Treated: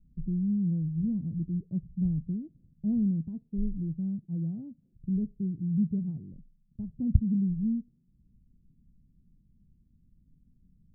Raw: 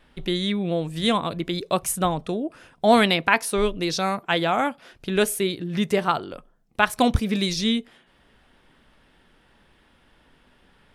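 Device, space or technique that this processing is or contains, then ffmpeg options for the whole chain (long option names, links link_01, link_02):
the neighbour's flat through the wall: -af "lowpass=frequency=190:width=0.5412,lowpass=frequency=190:width=1.3066,equalizer=frequency=180:width_type=o:width=0.77:gain=3"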